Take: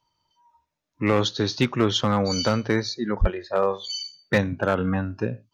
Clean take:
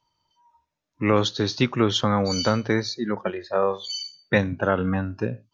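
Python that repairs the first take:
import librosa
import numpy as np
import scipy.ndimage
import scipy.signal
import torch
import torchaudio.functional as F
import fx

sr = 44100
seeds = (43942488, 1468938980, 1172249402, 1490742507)

y = fx.fix_declip(x, sr, threshold_db=-11.5)
y = fx.highpass(y, sr, hz=140.0, slope=24, at=(3.2, 3.32), fade=0.02)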